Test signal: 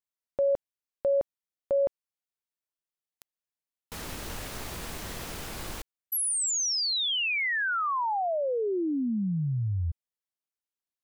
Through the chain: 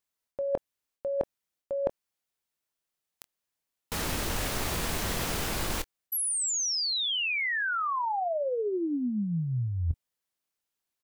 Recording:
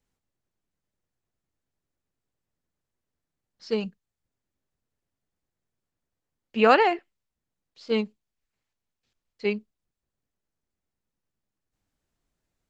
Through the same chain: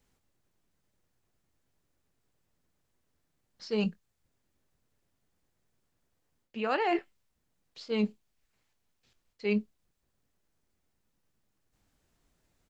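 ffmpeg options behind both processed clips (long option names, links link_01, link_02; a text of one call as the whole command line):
ffmpeg -i in.wav -filter_complex "[0:a]areverse,acompressor=threshold=-36dB:ratio=20:attack=72:release=151:knee=1:detection=rms,areverse,asplit=2[link_01][link_02];[link_02]adelay=24,volume=-14dB[link_03];[link_01][link_03]amix=inputs=2:normalize=0,volume=7dB" out.wav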